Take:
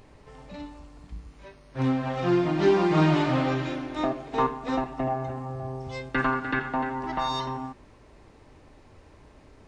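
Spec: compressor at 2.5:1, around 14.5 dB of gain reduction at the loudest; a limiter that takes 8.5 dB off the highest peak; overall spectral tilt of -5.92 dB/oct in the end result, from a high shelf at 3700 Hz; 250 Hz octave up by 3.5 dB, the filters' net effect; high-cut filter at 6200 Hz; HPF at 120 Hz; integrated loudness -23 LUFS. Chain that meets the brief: HPF 120 Hz; LPF 6200 Hz; bell 250 Hz +5 dB; high shelf 3700 Hz -6 dB; compressor 2.5:1, threshold -37 dBFS; gain +16 dB; limiter -13.5 dBFS

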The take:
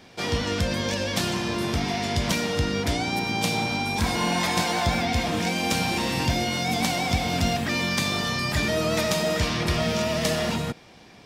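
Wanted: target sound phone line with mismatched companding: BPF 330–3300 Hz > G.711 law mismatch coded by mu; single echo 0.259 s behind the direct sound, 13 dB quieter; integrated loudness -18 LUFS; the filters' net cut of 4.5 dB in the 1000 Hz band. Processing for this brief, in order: BPF 330–3300 Hz; bell 1000 Hz -6.5 dB; echo 0.259 s -13 dB; G.711 law mismatch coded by mu; gain +10 dB

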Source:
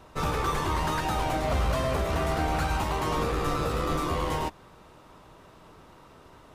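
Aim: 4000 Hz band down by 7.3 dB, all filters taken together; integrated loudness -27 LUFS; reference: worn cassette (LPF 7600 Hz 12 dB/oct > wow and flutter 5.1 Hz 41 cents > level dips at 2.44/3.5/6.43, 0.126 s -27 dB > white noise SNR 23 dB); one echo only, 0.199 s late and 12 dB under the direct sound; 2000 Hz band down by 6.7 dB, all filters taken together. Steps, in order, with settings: LPF 7600 Hz 12 dB/oct; bell 2000 Hz -7.5 dB; bell 4000 Hz -6.5 dB; echo 0.199 s -12 dB; wow and flutter 5.1 Hz 41 cents; level dips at 2.44/3.5/6.43, 0.126 s -27 dB; white noise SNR 23 dB; gain +2.5 dB

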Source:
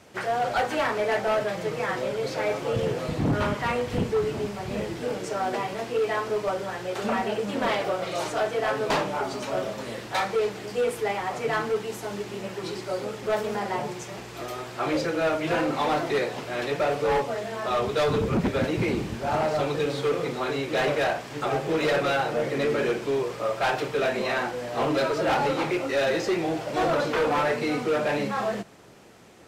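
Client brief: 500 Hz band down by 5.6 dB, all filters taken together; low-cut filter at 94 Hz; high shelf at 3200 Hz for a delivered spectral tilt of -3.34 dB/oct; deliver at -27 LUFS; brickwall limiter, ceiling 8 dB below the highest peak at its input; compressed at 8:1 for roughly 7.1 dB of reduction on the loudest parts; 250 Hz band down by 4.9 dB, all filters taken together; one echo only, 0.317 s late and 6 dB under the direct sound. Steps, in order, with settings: HPF 94 Hz; bell 250 Hz -4.5 dB; bell 500 Hz -6 dB; high shelf 3200 Hz +8 dB; compressor 8:1, threshold -29 dBFS; limiter -24.5 dBFS; echo 0.317 s -6 dB; gain +6 dB

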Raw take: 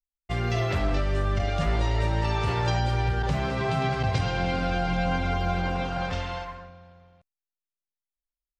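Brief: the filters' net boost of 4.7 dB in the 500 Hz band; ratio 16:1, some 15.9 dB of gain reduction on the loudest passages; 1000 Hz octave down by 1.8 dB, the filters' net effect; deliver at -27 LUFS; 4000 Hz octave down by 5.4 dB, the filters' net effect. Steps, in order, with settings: bell 500 Hz +8.5 dB; bell 1000 Hz -7 dB; bell 4000 Hz -7 dB; compressor 16:1, threshold -36 dBFS; gain +14 dB

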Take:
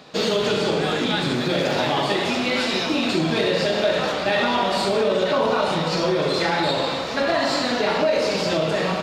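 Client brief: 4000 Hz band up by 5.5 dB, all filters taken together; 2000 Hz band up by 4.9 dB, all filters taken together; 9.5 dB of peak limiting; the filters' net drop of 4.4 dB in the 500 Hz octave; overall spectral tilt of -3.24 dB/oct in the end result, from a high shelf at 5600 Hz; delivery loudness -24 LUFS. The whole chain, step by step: bell 500 Hz -6 dB; bell 2000 Hz +5 dB; bell 4000 Hz +3.5 dB; high shelf 5600 Hz +4.5 dB; gain -0.5 dB; limiter -16.5 dBFS

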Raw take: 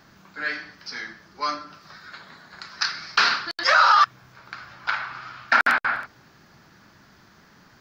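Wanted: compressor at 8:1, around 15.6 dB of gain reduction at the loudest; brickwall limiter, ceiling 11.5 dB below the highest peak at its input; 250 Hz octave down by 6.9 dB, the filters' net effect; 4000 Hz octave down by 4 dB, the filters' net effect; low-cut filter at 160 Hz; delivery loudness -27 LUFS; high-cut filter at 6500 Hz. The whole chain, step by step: HPF 160 Hz; LPF 6500 Hz; bell 250 Hz -8 dB; bell 4000 Hz -4 dB; compressor 8:1, threshold -30 dBFS; gain +11.5 dB; limiter -16 dBFS

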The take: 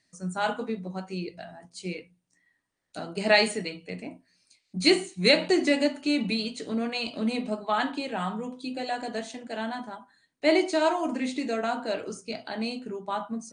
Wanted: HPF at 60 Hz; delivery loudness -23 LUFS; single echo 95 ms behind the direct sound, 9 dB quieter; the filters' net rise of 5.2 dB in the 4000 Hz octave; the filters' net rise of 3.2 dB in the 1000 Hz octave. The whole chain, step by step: HPF 60 Hz; bell 1000 Hz +4 dB; bell 4000 Hz +5.5 dB; echo 95 ms -9 dB; gain +2 dB

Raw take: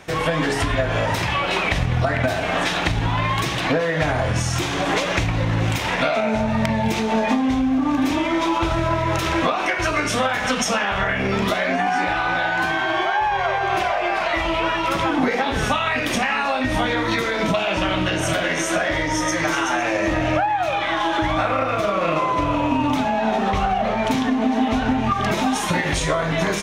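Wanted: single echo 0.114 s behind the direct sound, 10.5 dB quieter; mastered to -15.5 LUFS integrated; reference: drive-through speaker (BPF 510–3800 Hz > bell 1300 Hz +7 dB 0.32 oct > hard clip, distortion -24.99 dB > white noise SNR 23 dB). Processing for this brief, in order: BPF 510–3800 Hz; bell 1300 Hz +7 dB 0.32 oct; echo 0.114 s -10.5 dB; hard clip -12.5 dBFS; white noise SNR 23 dB; gain +5.5 dB

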